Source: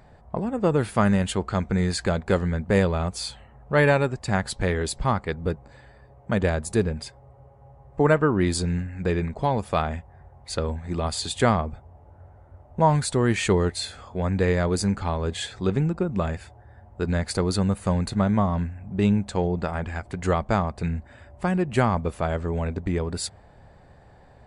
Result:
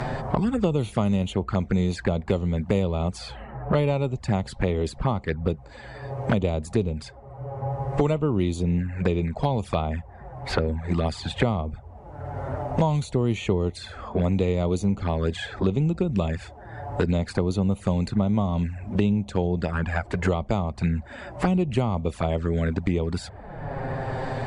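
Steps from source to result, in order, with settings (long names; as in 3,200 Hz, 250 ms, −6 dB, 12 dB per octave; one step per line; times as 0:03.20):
flanger swept by the level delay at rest 8.9 ms, full sweep at −21 dBFS
high-frequency loss of the air 51 metres
multiband upward and downward compressor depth 100%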